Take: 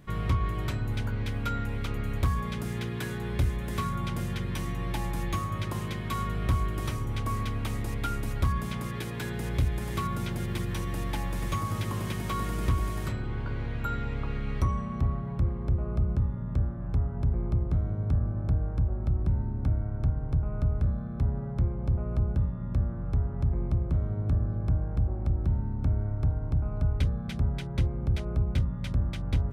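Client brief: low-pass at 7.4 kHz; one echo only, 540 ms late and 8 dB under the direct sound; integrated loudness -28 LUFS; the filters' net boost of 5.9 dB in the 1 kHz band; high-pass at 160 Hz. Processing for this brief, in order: high-pass 160 Hz; low-pass 7.4 kHz; peaking EQ 1 kHz +7 dB; delay 540 ms -8 dB; trim +5.5 dB

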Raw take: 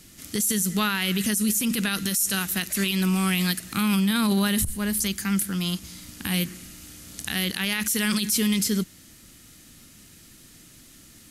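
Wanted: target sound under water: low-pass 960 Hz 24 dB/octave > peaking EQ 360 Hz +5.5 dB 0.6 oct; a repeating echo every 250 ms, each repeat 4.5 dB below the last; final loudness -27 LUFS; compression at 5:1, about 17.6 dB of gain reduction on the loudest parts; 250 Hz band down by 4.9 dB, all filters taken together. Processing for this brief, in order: peaking EQ 250 Hz -8 dB; compression 5:1, threshold -42 dBFS; low-pass 960 Hz 24 dB/octave; peaking EQ 360 Hz +5.5 dB 0.6 oct; feedback delay 250 ms, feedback 60%, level -4.5 dB; trim +19.5 dB

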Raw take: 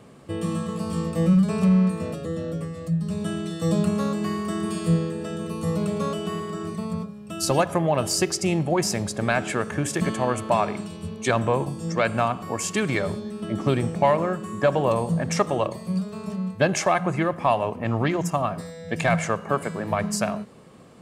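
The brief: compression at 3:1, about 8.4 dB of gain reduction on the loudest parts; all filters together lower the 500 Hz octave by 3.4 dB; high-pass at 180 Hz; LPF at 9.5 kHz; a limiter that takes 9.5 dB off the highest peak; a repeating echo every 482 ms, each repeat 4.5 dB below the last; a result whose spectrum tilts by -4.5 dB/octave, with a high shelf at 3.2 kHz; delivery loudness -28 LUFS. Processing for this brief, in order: high-pass 180 Hz; low-pass 9.5 kHz; peaking EQ 500 Hz -4.5 dB; treble shelf 3.2 kHz +6.5 dB; compression 3:1, threshold -29 dBFS; peak limiter -23.5 dBFS; feedback delay 482 ms, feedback 60%, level -4.5 dB; trim +4 dB

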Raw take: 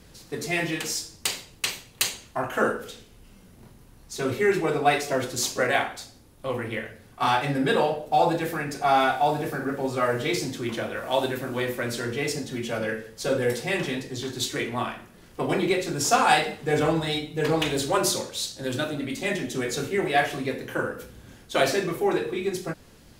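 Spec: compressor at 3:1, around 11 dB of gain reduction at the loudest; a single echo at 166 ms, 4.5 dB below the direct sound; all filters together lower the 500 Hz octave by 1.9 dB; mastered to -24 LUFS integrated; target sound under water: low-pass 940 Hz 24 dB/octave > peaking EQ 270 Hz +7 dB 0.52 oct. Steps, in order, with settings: peaking EQ 500 Hz -3.5 dB; compression 3:1, threshold -32 dBFS; low-pass 940 Hz 24 dB/octave; peaking EQ 270 Hz +7 dB 0.52 oct; delay 166 ms -4.5 dB; trim +9 dB

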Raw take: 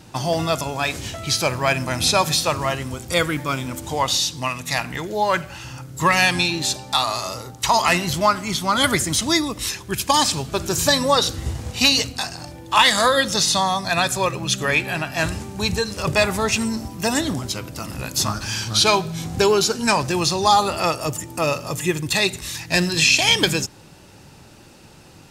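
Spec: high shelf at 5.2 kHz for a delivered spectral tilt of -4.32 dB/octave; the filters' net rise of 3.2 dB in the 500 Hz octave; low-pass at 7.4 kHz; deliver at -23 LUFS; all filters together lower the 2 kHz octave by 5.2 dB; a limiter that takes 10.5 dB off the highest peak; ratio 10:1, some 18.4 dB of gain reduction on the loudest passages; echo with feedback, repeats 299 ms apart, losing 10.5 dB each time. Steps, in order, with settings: low-pass 7.4 kHz; peaking EQ 500 Hz +4.5 dB; peaking EQ 2 kHz -6.5 dB; treble shelf 5.2 kHz -3.5 dB; compression 10:1, threshold -30 dBFS; peak limiter -27 dBFS; feedback delay 299 ms, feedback 30%, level -10.5 dB; trim +13 dB

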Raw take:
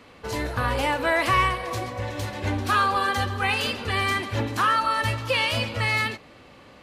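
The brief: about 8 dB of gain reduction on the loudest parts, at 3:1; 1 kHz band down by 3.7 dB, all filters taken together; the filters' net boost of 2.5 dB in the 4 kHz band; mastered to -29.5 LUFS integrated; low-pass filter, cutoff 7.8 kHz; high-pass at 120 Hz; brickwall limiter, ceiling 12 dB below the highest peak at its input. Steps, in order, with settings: high-pass 120 Hz; low-pass 7.8 kHz; peaking EQ 1 kHz -5 dB; peaking EQ 4 kHz +4 dB; compression 3:1, threshold -30 dBFS; trim +7.5 dB; peak limiter -21.5 dBFS

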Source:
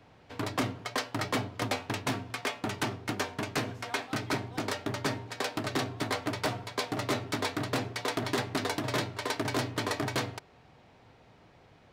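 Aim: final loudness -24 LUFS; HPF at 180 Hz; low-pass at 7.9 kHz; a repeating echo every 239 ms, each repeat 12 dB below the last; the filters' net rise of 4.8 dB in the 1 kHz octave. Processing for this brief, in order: high-pass 180 Hz; low-pass 7.9 kHz; peaking EQ 1 kHz +6 dB; feedback delay 239 ms, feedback 25%, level -12 dB; trim +7.5 dB

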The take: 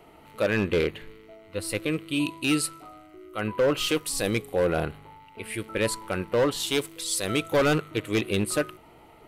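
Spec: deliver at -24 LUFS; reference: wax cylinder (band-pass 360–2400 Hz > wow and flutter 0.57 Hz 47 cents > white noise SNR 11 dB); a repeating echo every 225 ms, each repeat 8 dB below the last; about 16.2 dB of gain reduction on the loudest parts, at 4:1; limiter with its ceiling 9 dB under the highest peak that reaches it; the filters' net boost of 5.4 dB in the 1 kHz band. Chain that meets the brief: peaking EQ 1 kHz +7.5 dB; compression 4:1, threshold -37 dBFS; peak limiter -32.5 dBFS; band-pass 360–2400 Hz; feedback delay 225 ms, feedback 40%, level -8 dB; wow and flutter 0.57 Hz 47 cents; white noise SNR 11 dB; trim +20.5 dB

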